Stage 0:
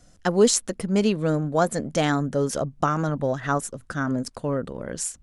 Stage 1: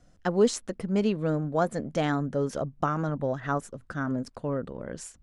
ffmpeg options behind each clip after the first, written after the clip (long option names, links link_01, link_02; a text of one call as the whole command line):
ffmpeg -i in.wav -af "lowpass=frequency=2600:poles=1,volume=-4dB" out.wav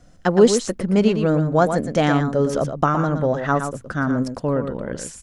ffmpeg -i in.wav -af "aecho=1:1:117:0.398,volume=8.5dB" out.wav